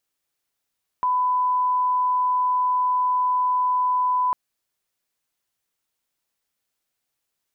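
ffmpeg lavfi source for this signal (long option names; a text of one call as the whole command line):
ffmpeg -f lavfi -i "sine=frequency=1000:duration=3.3:sample_rate=44100,volume=0.06dB" out.wav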